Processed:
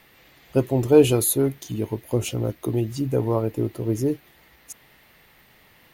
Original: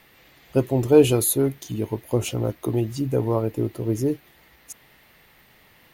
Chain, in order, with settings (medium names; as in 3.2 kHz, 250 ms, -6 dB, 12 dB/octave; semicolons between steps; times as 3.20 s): 1.87–2.92 s: dynamic bell 930 Hz, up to -4 dB, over -37 dBFS, Q 1